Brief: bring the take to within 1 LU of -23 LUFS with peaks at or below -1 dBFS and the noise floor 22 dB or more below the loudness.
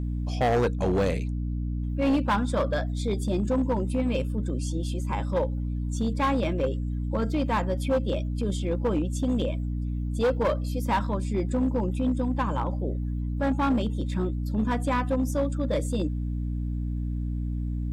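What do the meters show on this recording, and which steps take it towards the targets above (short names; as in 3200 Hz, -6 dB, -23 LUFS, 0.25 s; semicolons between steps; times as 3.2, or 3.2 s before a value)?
clipped 2.2%; flat tops at -19.0 dBFS; hum 60 Hz; harmonics up to 300 Hz; hum level -27 dBFS; loudness -27.5 LUFS; peak -19.0 dBFS; loudness target -23.0 LUFS
-> clip repair -19 dBFS; notches 60/120/180/240/300 Hz; gain +4.5 dB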